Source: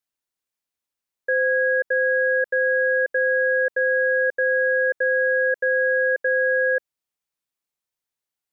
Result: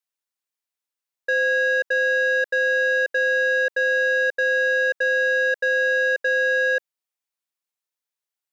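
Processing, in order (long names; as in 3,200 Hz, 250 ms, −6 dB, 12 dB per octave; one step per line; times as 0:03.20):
high-pass filter 500 Hz 6 dB per octave
leveller curve on the samples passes 1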